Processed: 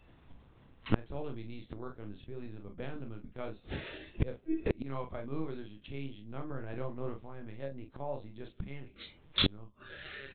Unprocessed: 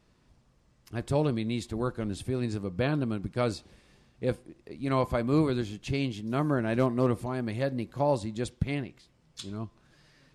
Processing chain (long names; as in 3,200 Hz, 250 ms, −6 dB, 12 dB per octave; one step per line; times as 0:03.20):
linear-prediction vocoder at 8 kHz pitch kept
noise reduction from a noise print of the clip's start 13 dB
on a send: ambience of single reflections 29 ms −7.5 dB, 44 ms −8.5 dB
on the sum: gate with flip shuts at −31 dBFS, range −31 dB
level +17.5 dB